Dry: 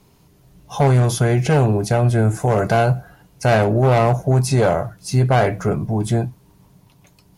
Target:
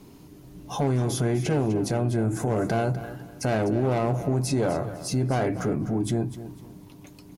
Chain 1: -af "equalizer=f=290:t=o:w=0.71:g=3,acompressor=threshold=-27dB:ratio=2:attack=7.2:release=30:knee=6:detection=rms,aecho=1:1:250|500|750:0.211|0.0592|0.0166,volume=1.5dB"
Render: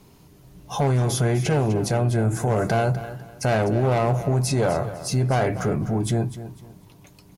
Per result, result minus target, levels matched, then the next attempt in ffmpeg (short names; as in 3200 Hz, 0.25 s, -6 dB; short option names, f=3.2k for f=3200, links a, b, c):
compressor: peak gain reduction -6 dB; 250 Hz band -3.0 dB
-af "equalizer=f=290:t=o:w=0.71:g=3,acompressor=threshold=-35.5dB:ratio=2:attack=7.2:release=30:knee=6:detection=rms,aecho=1:1:250|500|750:0.211|0.0592|0.0166,volume=1.5dB"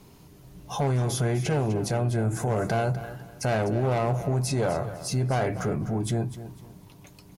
250 Hz band -3.0 dB
-af "equalizer=f=290:t=o:w=0.71:g=12.5,acompressor=threshold=-35.5dB:ratio=2:attack=7.2:release=30:knee=6:detection=rms,aecho=1:1:250|500|750:0.211|0.0592|0.0166,volume=1.5dB"